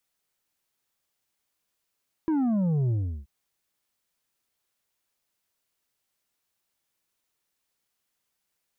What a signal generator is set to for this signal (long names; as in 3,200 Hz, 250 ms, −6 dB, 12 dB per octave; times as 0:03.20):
bass drop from 330 Hz, over 0.98 s, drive 6 dB, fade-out 0.36 s, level −22.5 dB